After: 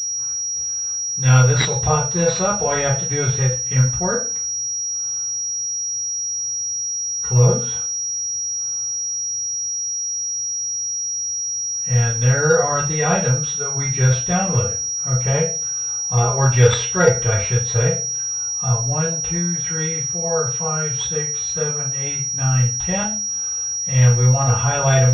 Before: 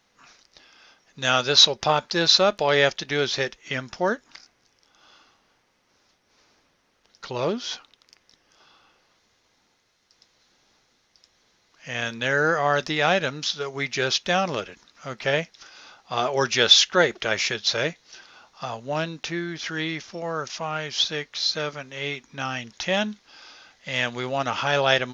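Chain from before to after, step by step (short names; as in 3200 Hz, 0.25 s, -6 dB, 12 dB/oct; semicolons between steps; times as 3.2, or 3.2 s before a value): reverb RT60 0.35 s, pre-delay 3 ms, DRR -10 dB; pulse-width modulation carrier 5700 Hz; gain -14 dB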